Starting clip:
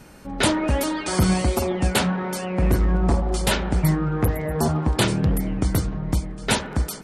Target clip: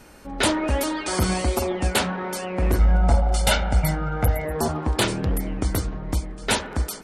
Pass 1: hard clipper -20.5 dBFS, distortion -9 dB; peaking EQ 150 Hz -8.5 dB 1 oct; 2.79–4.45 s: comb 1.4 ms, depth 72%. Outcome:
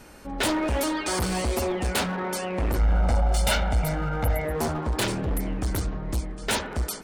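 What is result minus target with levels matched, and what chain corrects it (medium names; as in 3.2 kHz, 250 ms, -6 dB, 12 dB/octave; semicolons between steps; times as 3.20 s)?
hard clipper: distortion +27 dB
hard clipper -9.5 dBFS, distortion -36 dB; peaking EQ 150 Hz -8.5 dB 1 oct; 2.79–4.45 s: comb 1.4 ms, depth 72%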